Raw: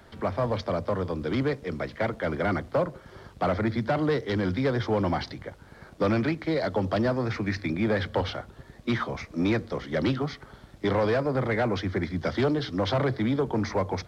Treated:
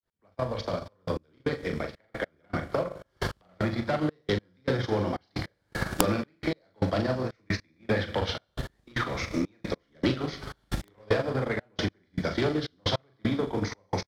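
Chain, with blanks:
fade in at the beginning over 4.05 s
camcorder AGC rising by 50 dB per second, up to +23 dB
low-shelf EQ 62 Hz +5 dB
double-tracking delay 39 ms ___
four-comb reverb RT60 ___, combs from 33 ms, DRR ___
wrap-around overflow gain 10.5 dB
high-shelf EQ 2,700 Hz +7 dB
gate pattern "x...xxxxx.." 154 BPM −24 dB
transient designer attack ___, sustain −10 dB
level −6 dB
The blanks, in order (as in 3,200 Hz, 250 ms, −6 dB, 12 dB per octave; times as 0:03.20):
−4 dB, 1.4 s, 7 dB, +6 dB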